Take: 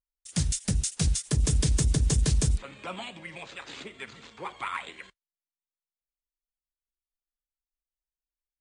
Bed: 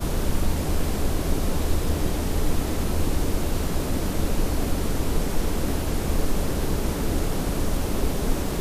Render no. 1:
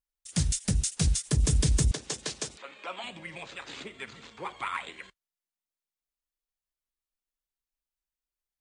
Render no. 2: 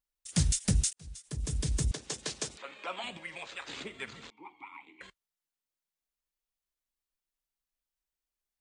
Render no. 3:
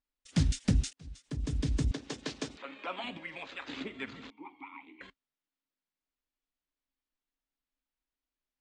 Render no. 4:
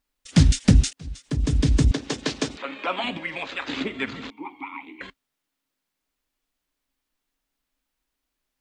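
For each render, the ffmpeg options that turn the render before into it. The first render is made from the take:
-filter_complex "[0:a]asettb=1/sr,asplit=3[a][b][c];[a]atrim=end=1.914[d];[b]atrim=start=1.91:end=3.04,asetpts=PTS-STARTPTS,afade=t=in:d=0.004:c=qsin,afade=t=out:st=1.126:d=0.004:c=qsin,highpass=460,lowpass=6.3k[e];[c]atrim=start=3.036[f];[d][e]acrossfade=d=0.004:c1=hsin:c2=qsin[g];[g][f]acrossfade=d=0.004:c1=qsin:c2=hsin"
-filter_complex "[0:a]asettb=1/sr,asplit=3[a][b][c];[a]atrim=end=3.174[d];[b]atrim=start=3.17:end=3.68,asetpts=PTS-STARTPTS,afade=t=in:d=0.004:c=qsin,afade=t=out:st=0.506:d=0.004:c=qsin,equalizer=f=120:w=0.4:g=-10.5[e];[c]atrim=start=3.676[f];[d][e]acrossfade=d=0.004:c1=hsin:c2=qsin[g];[g][f]acrossfade=d=0.004:c1=qsin:c2=hsin,asettb=1/sr,asplit=3[h][i][j];[h]atrim=end=4.304[k];[i]atrim=start=4.3:end=5.01,asetpts=PTS-STARTPTS,afade=t=in:d=0.004:c=qsin,afade=t=out:st=0.706:d=0.004:c=qsin,asplit=3[l][m][n];[l]bandpass=f=300:t=q:w=8,volume=0dB[o];[m]bandpass=f=870:t=q:w=8,volume=-6dB[p];[n]bandpass=f=2.24k:t=q:w=8,volume=-9dB[q];[o][p][q]amix=inputs=3:normalize=0[r];[j]atrim=start=5.006[s];[k][r]acrossfade=d=0.004:c1=hsin:c2=qsin[t];[t][s]acrossfade=d=0.004:c1=qsin:c2=hsin,asplit=2[u][v];[u]atrim=end=0.93,asetpts=PTS-STARTPTS,afade=t=out:st=0.926:d=0.004:c=hsin[w];[v]atrim=start=0.93,asetpts=PTS-STARTPTS,afade=t=in:d=1.72[x];[w][x]concat=n=2:v=0:a=1"
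-af "lowpass=4k,equalizer=f=270:w=4.6:g=13"
-af "volume=11.5dB"

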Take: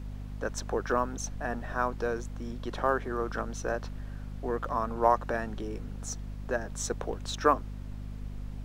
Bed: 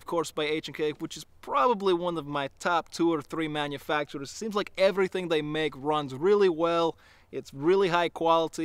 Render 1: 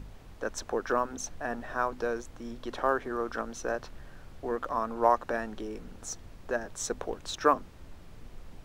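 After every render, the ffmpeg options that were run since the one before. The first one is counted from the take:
-af "bandreject=f=50:t=h:w=6,bandreject=f=100:t=h:w=6,bandreject=f=150:t=h:w=6,bandreject=f=200:t=h:w=6,bandreject=f=250:t=h:w=6"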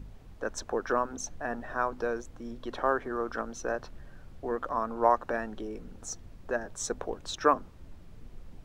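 -af "afftdn=nr=6:nf=-50"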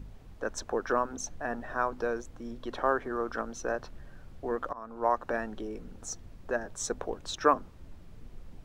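-filter_complex "[0:a]asplit=2[a][b];[a]atrim=end=4.73,asetpts=PTS-STARTPTS,afade=t=out:st=4.726:d=0.004:c=hsin:silence=0.125893[c];[b]atrim=start=4.73,asetpts=PTS-STARTPTS,afade=t=in:d=0.59:silence=0.125893[d];[c][d]concat=n=2:v=0:a=1"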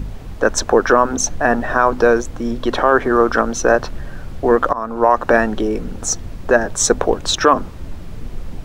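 -af "acontrast=38,alimiter=level_in=13.5dB:limit=-1dB:release=50:level=0:latency=1"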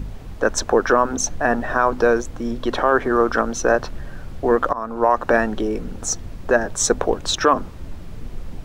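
-af "volume=-3.5dB"

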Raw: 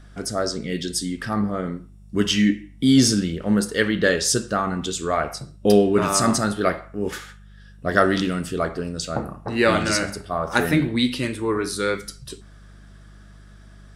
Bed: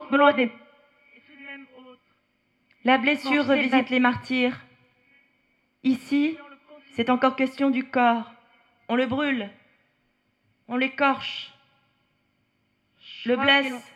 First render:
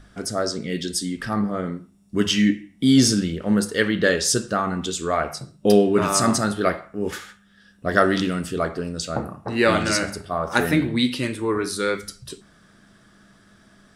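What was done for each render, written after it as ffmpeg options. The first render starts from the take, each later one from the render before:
-af "bandreject=f=50:t=h:w=4,bandreject=f=100:t=h:w=4,bandreject=f=150:t=h:w=4"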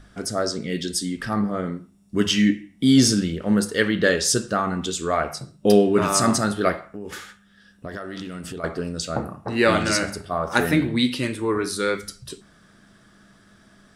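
-filter_complex "[0:a]asettb=1/sr,asplit=3[a][b][c];[a]atrim=end=6.914[d];[b]atrim=start=6.91:end=8.64,asetpts=PTS-STARTPTS,afade=t=in:d=0.004:c=qsin,afade=t=out:st=1.726:d=0.004:c=qsin,acompressor=threshold=-29dB:ratio=10:attack=3.2:release=140:knee=1:detection=peak[e];[c]atrim=start=8.636[f];[d][e]acrossfade=d=0.004:c1=hsin:c2=qsin[g];[g][f]acrossfade=d=0.004:c1=qsin:c2=hsin"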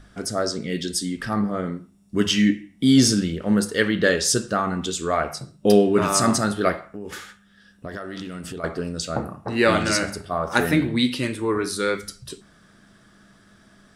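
-af anull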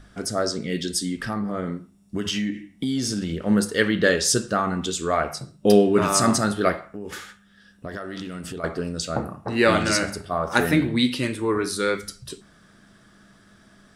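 -filter_complex "[0:a]asettb=1/sr,asplit=3[a][b][c];[a]atrim=end=1.254[d];[b]atrim=start=1.25:end=3.32,asetpts=PTS-STARTPTS,afade=t=in:d=0.004:c=qsin,afade=t=out:st=2.066:d=0.004:c=qsin,acompressor=threshold=-22dB:ratio=6:attack=3.2:release=140:knee=1:detection=peak[e];[c]atrim=start=3.316[f];[d][e]acrossfade=d=0.004:c1=hsin:c2=qsin[g];[g][f]acrossfade=d=0.004:c1=qsin:c2=hsin"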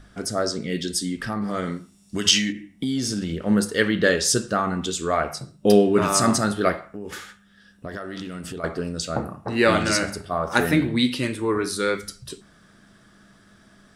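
-filter_complex "[0:a]asplit=3[a][b][c];[a]afade=t=out:st=1.41:d=0.02[d];[b]equalizer=f=6k:t=o:w=2.9:g=14,afade=t=in:st=1.41:d=0.02,afade=t=out:st=2.51:d=0.02[e];[c]afade=t=in:st=2.51:d=0.02[f];[d][e][f]amix=inputs=3:normalize=0"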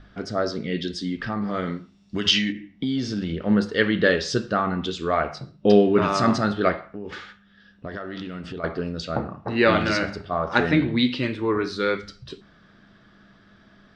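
-af "lowpass=f=4.5k:w=0.5412,lowpass=f=4.5k:w=1.3066"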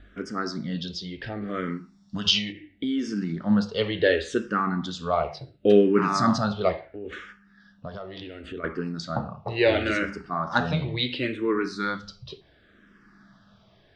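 -filter_complex "[0:a]asplit=2[a][b];[b]afreqshift=-0.71[c];[a][c]amix=inputs=2:normalize=1"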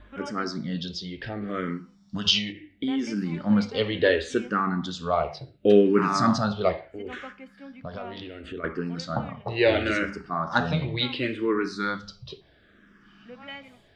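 -filter_complex "[1:a]volume=-22dB[a];[0:a][a]amix=inputs=2:normalize=0"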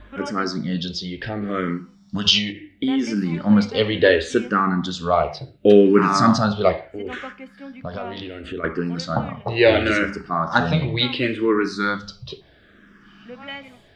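-af "volume=6dB,alimiter=limit=-2dB:level=0:latency=1"

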